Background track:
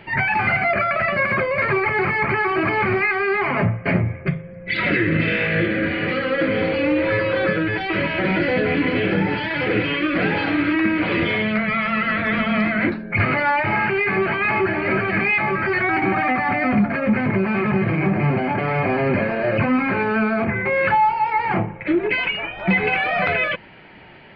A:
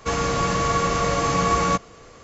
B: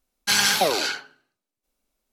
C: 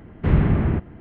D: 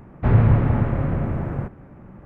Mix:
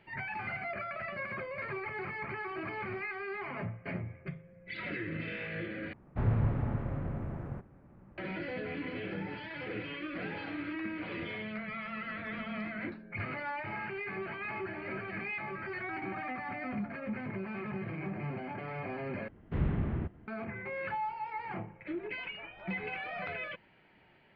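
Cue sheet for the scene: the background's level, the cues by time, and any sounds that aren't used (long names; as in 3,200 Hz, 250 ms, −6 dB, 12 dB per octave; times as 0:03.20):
background track −19 dB
0:05.93: overwrite with D −13.5 dB
0:19.28: overwrite with C −13.5 dB
not used: A, B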